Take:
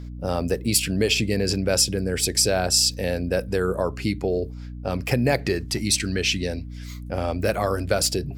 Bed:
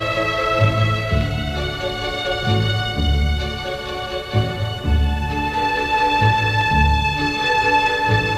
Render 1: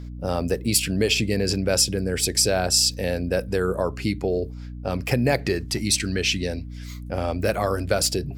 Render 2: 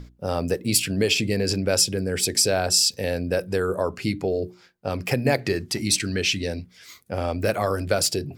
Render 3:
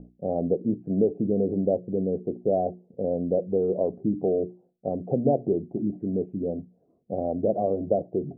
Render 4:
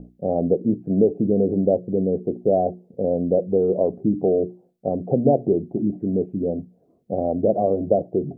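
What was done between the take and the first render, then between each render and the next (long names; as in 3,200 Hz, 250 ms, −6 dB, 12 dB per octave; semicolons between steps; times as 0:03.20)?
no processing that can be heard
mains-hum notches 60/120/180/240/300/360 Hz
Chebyshev low-pass filter 730 Hz, order 5; low shelf with overshoot 130 Hz −9.5 dB, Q 1.5
level +5 dB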